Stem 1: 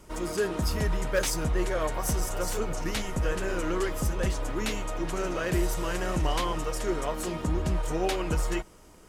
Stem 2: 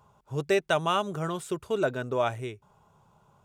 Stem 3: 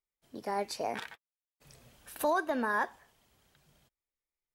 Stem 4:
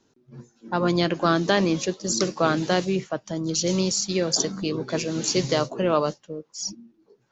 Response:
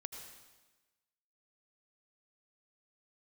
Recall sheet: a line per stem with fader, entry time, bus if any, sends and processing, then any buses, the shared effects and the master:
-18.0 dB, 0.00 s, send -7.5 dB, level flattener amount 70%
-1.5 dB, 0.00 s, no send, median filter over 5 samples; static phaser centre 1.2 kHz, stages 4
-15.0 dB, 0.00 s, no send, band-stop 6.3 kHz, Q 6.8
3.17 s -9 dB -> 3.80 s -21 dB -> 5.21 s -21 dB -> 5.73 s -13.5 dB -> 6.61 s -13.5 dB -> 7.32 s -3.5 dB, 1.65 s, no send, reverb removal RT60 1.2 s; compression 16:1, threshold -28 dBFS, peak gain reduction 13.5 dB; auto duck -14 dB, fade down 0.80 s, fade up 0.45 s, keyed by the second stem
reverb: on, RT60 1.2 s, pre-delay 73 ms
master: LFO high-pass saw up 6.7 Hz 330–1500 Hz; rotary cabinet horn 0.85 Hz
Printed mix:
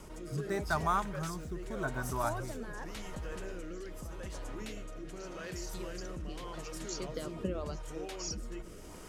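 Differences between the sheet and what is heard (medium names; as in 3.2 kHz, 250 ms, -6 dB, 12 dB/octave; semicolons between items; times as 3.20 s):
stem 3 -15.0 dB -> -9.0 dB; master: missing LFO high-pass saw up 6.7 Hz 330–1500 Hz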